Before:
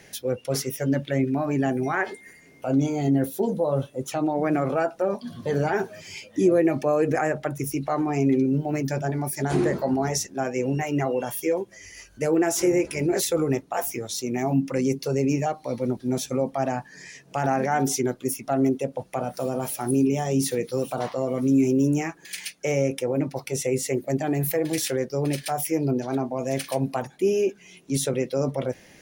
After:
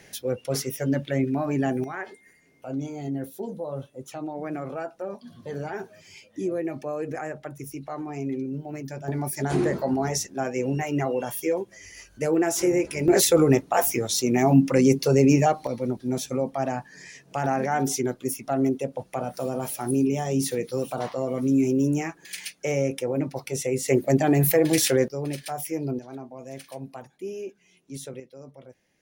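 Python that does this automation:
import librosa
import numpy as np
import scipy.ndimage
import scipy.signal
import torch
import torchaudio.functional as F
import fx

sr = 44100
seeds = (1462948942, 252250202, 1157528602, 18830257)

y = fx.gain(x, sr, db=fx.steps((0.0, -1.0), (1.84, -9.0), (9.08, -1.0), (13.08, 5.5), (15.67, -1.5), (23.88, 5.0), (25.08, -5.0), (25.99, -12.5), (28.2, -20.0)))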